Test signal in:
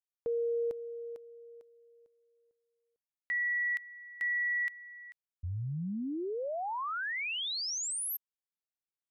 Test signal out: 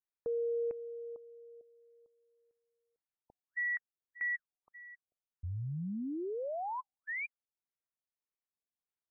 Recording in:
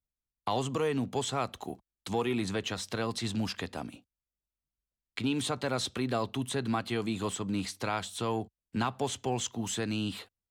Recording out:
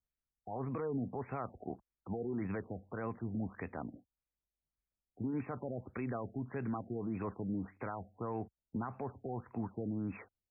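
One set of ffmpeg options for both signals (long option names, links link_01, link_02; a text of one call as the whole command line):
ffmpeg -i in.wav -af "alimiter=level_in=3.5dB:limit=-24dB:level=0:latency=1:release=30,volume=-3.5dB,afftfilt=real='re*lt(b*sr/1024,750*pow(2700/750,0.5+0.5*sin(2*PI*1.7*pts/sr)))':imag='im*lt(b*sr/1024,750*pow(2700/750,0.5+0.5*sin(2*PI*1.7*pts/sr)))':win_size=1024:overlap=0.75,volume=-2dB" out.wav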